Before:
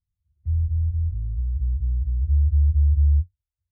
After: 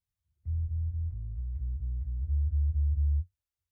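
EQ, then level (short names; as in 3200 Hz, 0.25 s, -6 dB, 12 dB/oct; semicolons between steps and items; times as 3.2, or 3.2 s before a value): low shelf 150 Hz -12 dB; 0.0 dB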